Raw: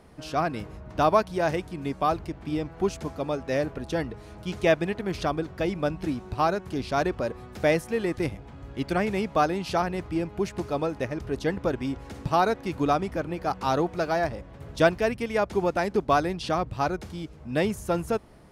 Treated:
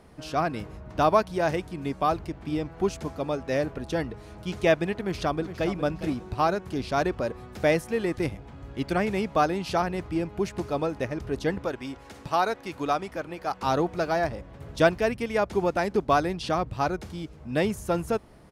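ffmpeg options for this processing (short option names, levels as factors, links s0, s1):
-filter_complex "[0:a]asplit=2[s0][s1];[s1]afade=t=in:st=4.98:d=0.01,afade=t=out:st=5.72:d=0.01,aecho=0:1:410|820|1230:0.266073|0.0798218|0.0239465[s2];[s0][s2]amix=inputs=2:normalize=0,asettb=1/sr,asplit=3[s3][s4][s5];[s3]atrim=end=11.644[s6];[s4]atrim=start=11.64:end=13.62,asetpts=PTS-STARTPTS,afade=t=in:d=0.004:c=qsin,afade=t=out:st=1.976:d=0.004:c=qsin,lowshelf=f=350:g=-10.5[s7];[s5]atrim=start=13.616[s8];[s6][s7]acrossfade=d=0.004:c1=hsin:c2=qsin[s9];[s9][s8]acrossfade=d=0.004:c1=qsin:c2=hsin"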